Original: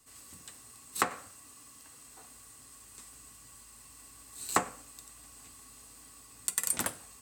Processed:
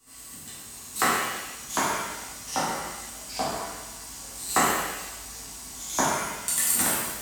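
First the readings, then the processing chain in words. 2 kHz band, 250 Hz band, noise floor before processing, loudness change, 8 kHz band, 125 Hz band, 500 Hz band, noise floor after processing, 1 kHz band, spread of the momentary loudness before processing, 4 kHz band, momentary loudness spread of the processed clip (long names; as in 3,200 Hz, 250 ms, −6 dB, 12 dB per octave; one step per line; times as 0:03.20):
+12.0 dB, +12.0 dB, −55 dBFS, +6.0 dB, +10.0 dB, +11.5 dB, +11.5 dB, −43 dBFS, +11.0 dB, 19 LU, +13.0 dB, 16 LU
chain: delay with pitch and tempo change per echo 560 ms, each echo −3 semitones, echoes 3
reverb with rising layers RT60 1 s, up +7 semitones, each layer −8 dB, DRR −8 dB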